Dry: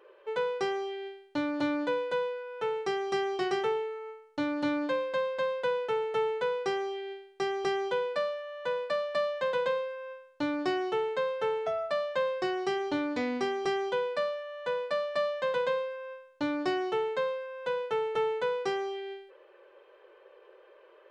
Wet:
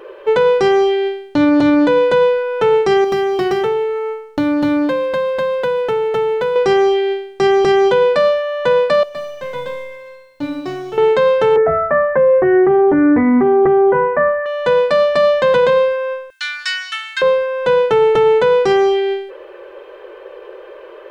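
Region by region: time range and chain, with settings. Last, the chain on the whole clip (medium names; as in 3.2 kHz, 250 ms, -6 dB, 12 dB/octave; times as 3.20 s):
3.04–6.56 s: median filter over 5 samples + compression 2.5:1, threshold -39 dBFS
9.03–10.98 s: companding laws mixed up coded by mu + feedback comb 140 Hz, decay 1.3 s, mix 90%
11.56–14.46 s: elliptic low-pass 1.9 kHz, stop band 70 dB + doubling 13 ms -2 dB
16.30–17.22 s: elliptic high-pass 1.5 kHz, stop band 80 dB + treble shelf 6.3 kHz +8 dB
whole clip: bass shelf 320 Hz +10.5 dB; loudness maximiser +23 dB; trim -5 dB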